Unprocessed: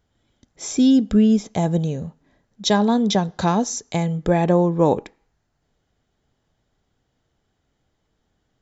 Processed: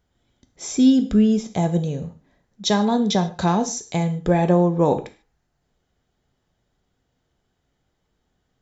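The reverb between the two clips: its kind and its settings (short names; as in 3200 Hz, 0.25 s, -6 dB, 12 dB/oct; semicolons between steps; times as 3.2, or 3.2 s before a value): non-linear reverb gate 0.17 s falling, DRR 8 dB; gain -1.5 dB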